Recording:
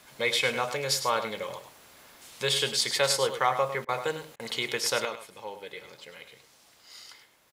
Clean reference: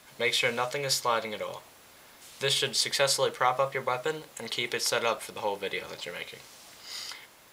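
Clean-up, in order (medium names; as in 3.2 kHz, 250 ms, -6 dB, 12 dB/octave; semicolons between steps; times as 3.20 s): interpolate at 3.85/4.36 s, 35 ms; inverse comb 102 ms -10.5 dB; trim 0 dB, from 5.05 s +9 dB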